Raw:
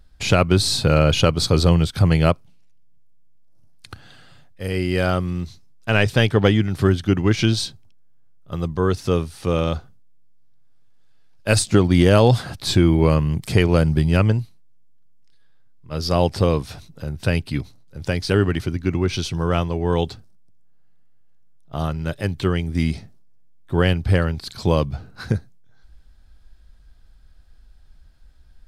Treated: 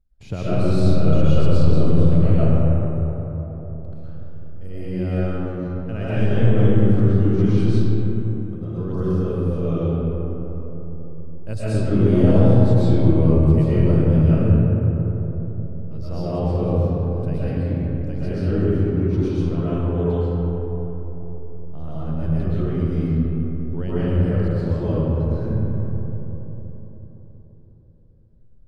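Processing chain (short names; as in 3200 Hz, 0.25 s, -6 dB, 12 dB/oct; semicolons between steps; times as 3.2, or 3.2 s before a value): gate -41 dBFS, range -8 dB; tilt shelf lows +8.5 dB, about 710 Hz; reverb RT60 4.0 s, pre-delay 85 ms, DRR -11.5 dB; gain -18 dB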